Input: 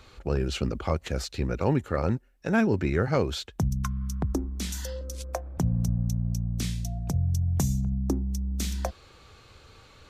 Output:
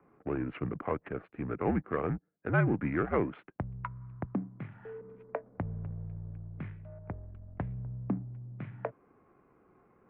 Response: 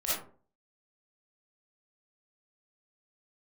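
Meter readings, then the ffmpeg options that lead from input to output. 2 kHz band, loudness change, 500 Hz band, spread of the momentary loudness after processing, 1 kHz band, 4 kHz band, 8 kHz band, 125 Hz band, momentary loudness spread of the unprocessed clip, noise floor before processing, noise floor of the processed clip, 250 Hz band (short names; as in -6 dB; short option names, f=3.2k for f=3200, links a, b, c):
-3.0 dB, -7.0 dB, -5.0 dB, 14 LU, -3.0 dB, under -25 dB, under -40 dB, -9.0 dB, 8 LU, -54 dBFS, -67 dBFS, -6.0 dB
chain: -af "adynamicsmooth=sensitivity=4:basefreq=750,highpass=f=210:t=q:w=0.5412,highpass=f=210:t=q:w=1.307,lowpass=f=2.4k:t=q:w=0.5176,lowpass=f=2.4k:t=q:w=0.7071,lowpass=f=2.4k:t=q:w=1.932,afreqshift=-75,equalizer=f=420:w=0.46:g=-3.5"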